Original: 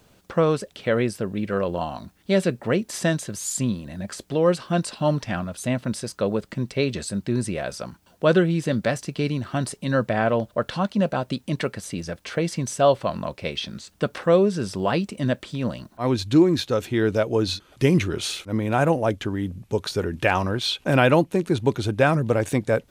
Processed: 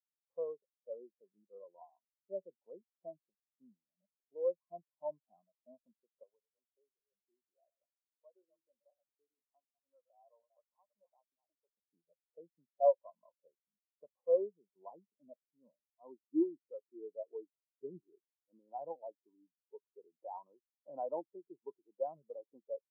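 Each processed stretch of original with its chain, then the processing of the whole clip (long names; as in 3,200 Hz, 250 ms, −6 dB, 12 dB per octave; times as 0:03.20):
0:06.23–0:11.77: delay that plays each chunk backwards 181 ms, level −10.5 dB + high-pass filter 950 Hz 6 dB per octave + downward compressor 2 to 1, threshold −29 dBFS
whole clip: elliptic band-pass filter 140–960 Hz, stop band 40 dB; first difference; every bin expanded away from the loudest bin 2.5 to 1; level +11 dB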